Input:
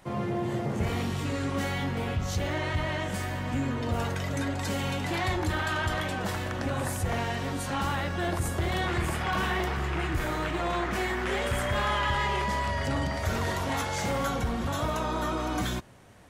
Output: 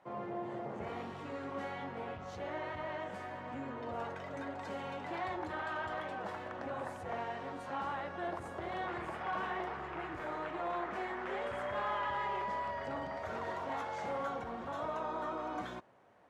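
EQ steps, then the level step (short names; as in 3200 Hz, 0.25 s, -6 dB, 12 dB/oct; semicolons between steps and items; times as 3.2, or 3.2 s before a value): band-pass 770 Hz, Q 0.85; -5.5 dB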